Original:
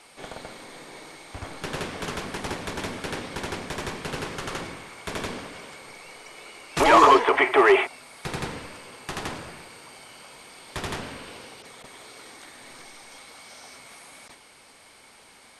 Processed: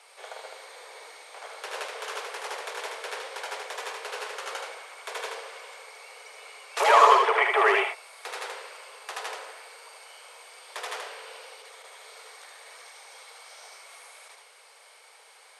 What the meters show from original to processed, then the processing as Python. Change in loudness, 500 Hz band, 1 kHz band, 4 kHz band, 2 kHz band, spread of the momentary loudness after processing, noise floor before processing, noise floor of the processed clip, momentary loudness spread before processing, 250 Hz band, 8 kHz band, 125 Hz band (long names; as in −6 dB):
−2.5 dB, −5.0 dB, −1.0 dB, −2.0 dB, −1.5 dB, 25 LU, −52 dBFS, −54 dBFS, 26 LU, below −15 dB, −2.0 dB, below −40 dB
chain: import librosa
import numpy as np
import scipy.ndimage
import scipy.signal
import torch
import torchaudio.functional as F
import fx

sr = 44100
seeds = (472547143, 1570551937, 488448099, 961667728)

p1 = scipy.signal.sosfilt(scipy.signal.ellip(4, 1.0, 50, 450.0, 'highpass', fs=sr, output='sos'), x)
p2 = p1 + fx.echo_single(p1, sr, ms=76, db=-4.0, dry=0)
y = p2 * 10.0 ** (-2.5 / 20.0)